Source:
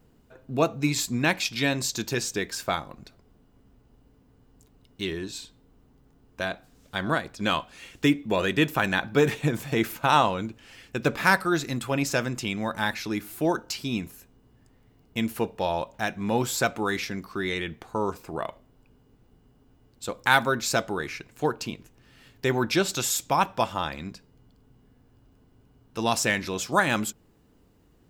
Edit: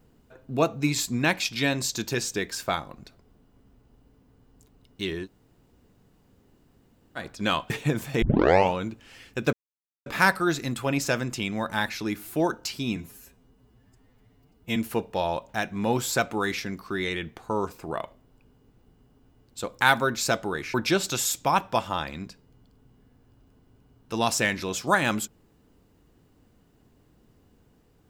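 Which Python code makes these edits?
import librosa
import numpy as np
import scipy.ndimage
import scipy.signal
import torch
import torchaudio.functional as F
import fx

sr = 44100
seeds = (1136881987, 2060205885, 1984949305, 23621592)

y = fx.edit(x, sr, fx.room_tone_fill(start_s=5.25, length_s=1.93, crossfade_s=0.06),
    fx.cut(start_s=7.7, length_s=1.58),
    fx.tape_start(start_s=9.8, length_s=0.53),
    fx.insert_silence(at_s=11.11, length_s=0.53),
    fx.stretch_span(start_s=14.01, length_s=1.2, factor=1.5),
    fx.cut(start_s=21.19, length_s=1.4), tone=tone)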